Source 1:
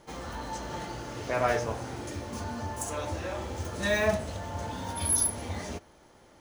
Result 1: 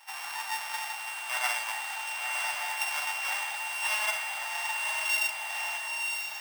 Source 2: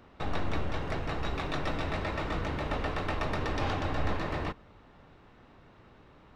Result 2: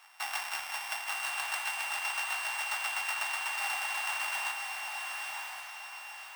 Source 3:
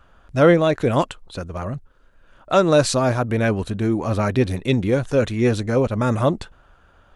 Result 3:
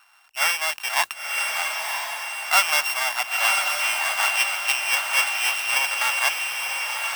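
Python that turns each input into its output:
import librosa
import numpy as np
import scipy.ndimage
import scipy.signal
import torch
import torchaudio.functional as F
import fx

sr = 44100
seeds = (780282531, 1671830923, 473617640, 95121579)

p1 = np.r_[np.sort(x[:len(x) // 16 * 16].reshape(-1, 16), axis=1).ravel(), x[len(x) // 16 * 16:]]
p2 = scipy.signal.sosfilt(scipy.signal.ellip(4, 1.0, 50, 790.0, 'highpass', fs=sr, output='sos'), p1)
p3 = fx.rider(p2, sr, range_db=4, speed_s=0.5)
p4 = fx.mod_noise(p3, sr, seeds[0], snr_db=20)
p5 = p4 + fx.echo_diffused(p4, sr, ms=1016, feedback_pct=44, wet_db=-3, dry=0)
y = p5 * librosa.db_to_amplitude(1.0)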